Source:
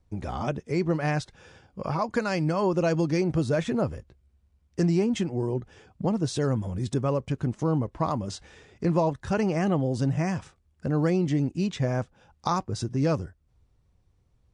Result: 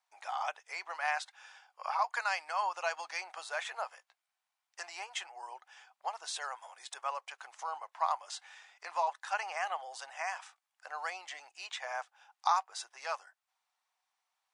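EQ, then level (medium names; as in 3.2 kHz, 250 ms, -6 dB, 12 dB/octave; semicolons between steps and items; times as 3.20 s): elliptic high-pass 770 Hz, stop band 70 dB; dynamic bell 5.5 kHz, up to -4 dB, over -52 dBFS, Q 1.9; 0.0 dB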